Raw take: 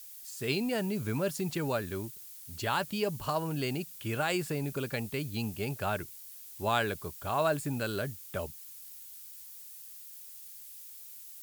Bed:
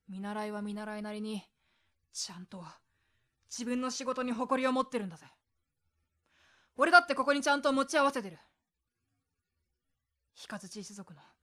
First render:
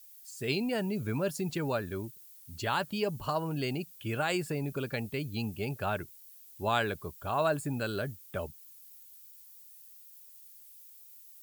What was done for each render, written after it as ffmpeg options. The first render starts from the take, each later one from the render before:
-af "afftdn=nr=9:nf=-49"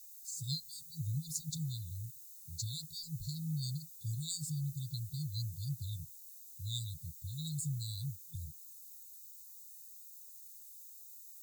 -af "afftfilt=real='re*(1-between(b*sr/4096,170,3500))':imag='im*(1-between(b*sr/4096,170,3500))':win_size=4096:overlap=0.75,superequalizer=6b=1.58:7b=2.24:15b=2"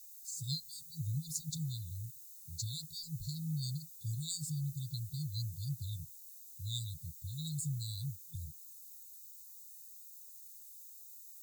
-af anull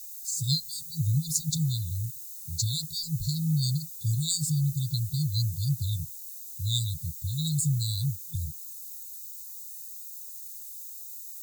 -af "volume=11.5dB"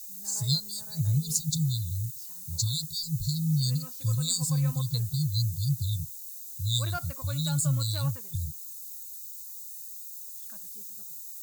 -filter_complex "[1:a]volume=-15.5dB[a];[0:a][a]amix=inputs=2:normalize=0"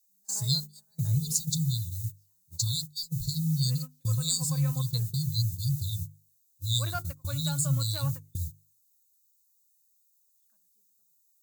-af "agate=range=-27dB:threshold=-32dB:ratio=16:detection=peak,bandreject=f=50:t=h:w=6,bandreject=f=100:t=h:w=6,bandreject=f=150:t=h:w=6,bandreject=f=200:t=h:w=6,bandreject=f=250:t=h:w=6,bandreject=f=300:t=h:w=6,bandreject=f=350:t=h:w=6,bandreject=f=400:t=h:w=6,bandreject=f=450:t=h:w=6"

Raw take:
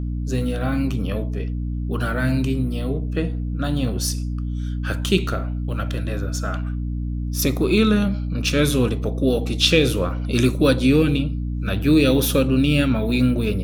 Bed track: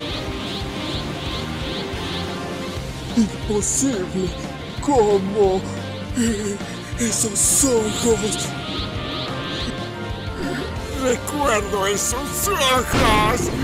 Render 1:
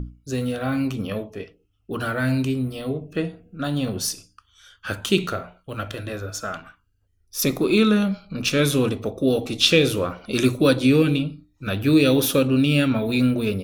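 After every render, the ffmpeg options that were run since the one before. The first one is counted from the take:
-af "bandreject=f=60:t=h:w=6,bandreject=f=120:t=h:w=6,bandreject=f=180:t=h:w=6,bandreject=f=240:t=h:w=6,bandreject=f=300:t=h:w=6"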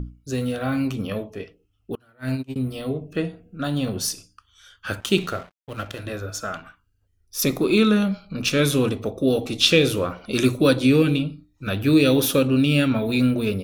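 -filter_complex "[0:a]asettb=1/sr,asplit=3[a][b][c];[a]atrim=end=1.954[d];[b]atrim=start=1.95:end=2.56,asetpts=PTS-STARTPTS,afade=t=in:d=0.004:c=qsin,afade=t=out:st=0.606:d=0.004:c=qsin,agate=range=-32dB:threshold=-21dB:ratio=16:release=100:detection=peak[e];[c]atrim=start=2.556[f];[d][e]acrossfade=d=0.004:c1=hsin:c2=qsin[g];[g][f]acrossfade=d=0.004:c1=qsin:c2=hsin,asettb=1/sr,asplit=3[h][i][j];[h]atrim=end=5.004[k];[i]atrim=start=5:end=6.06,asetpts=PTS-STARTPTS,afade=t=in:d=0.004:c=qsin,afade=t=out:st=1.056:d=0.004:c=qsin,aeval=exprs='sgn(val(0))*max(abs(val(0))-0.0075,0)':c=same[l];[j]atrim=start=6.056[m];[k][l]acrossfade=d=0.004:c1=hsin:c2=qsin[n];[n][m]acrossfade=d=0.004:c1=qsin:c2=hsin"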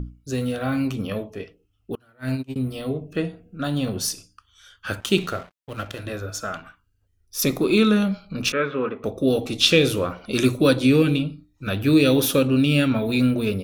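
-filter_complex "[0:a]asettb=1/sr,asplit=3[a][b][c];[a]atrim=end=8.524[d];[b]atrim=start=8.52:end=9.04,asetpts=PTS-STARTPTS,afade=t=in:d=0.004:c=qsin,afade=t=out:st=0.516:d=0.004:c=qsin,highpass=300,equalizer=f=310:t=q:w=4:g=-7,equalizer=f=710:t=q:w=4:g=-6,equalizer=f=1.3k:t=q:w=4:g=6,lowpass=f=2.2k:w=0.5412,lowpass=f=2.2k:w=1.3066[e];[c]atrim=start=9.036[f];[d][e]acrossfade=d=0.004:c1=hsin:c2=qsin[g];[g][f]acrossfade=d=0.004:c1=qsin:c2=hsin"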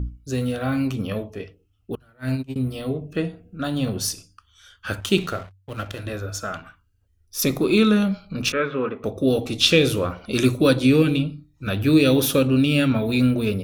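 -af "equalizer=f=66:w=1:g=6.5,bandreject=f=47.96:t=h:w=4,bandreject=f=95.92:t=h:w=4,bandreject=f=143.88:t=h:w=4"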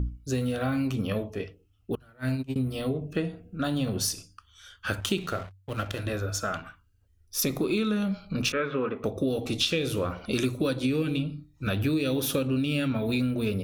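-af "acompressor=threshold=-24dB:ratio=6"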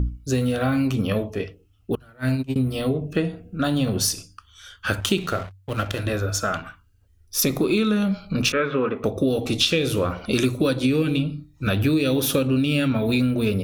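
-af "volume=6dB"

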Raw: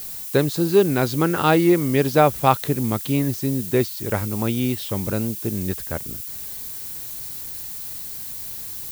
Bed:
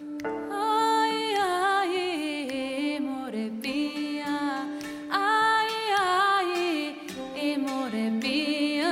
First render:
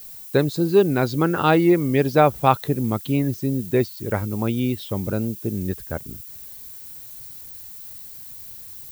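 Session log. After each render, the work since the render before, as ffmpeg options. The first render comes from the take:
-af "afftdn=nr=9:nf=-33"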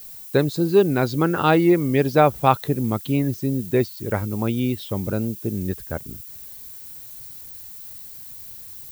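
-af anull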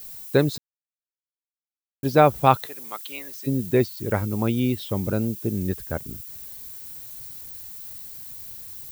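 -filter_complex "[0:a]asplit=3[a][b][c];[a]afade=t=out:st=2.65:d=0.02[d];[b]highpass=1.1k,afade=t=in:st=2.65:d=0.02,afade=t=out:st=3.46:d=0.02[e];[c]afade=t=in:st=3.46:d=0.02[f];[d][e][f]amix=inputs=3:normalize=0,asplit=3[g][h][i];[g]atrim=end=0.58,asetpts=PTS-STARTPTS,afade=t=out:st=0.576:d=0.004:c=hsin[j];[h]atrim=start=0.58:end=2.03,asetpts=PTS-STARTPTS,volume=0[k];[i]atrim=start=2.03,asetpts=PTS-STARTPTS,afade=t=in:d=0.004:c=hsin[l];[j][k][l]concat=n=3:v=0:a=1"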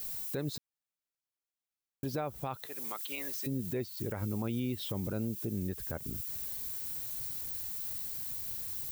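-af "acompressor=threshold=-29dB:ratio=4,alimiter=level_in=2dB:limit=-24dB:level=0:latency=1:release=77,volume=-2dB"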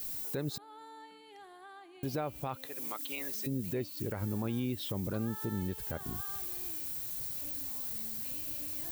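-filter_complex "[1:a]volume=-27.5dB[a];[0:a][a]amix=inputs=2:normalize=0"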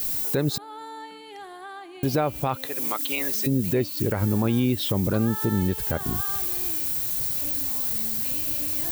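-af "volume=12dB"

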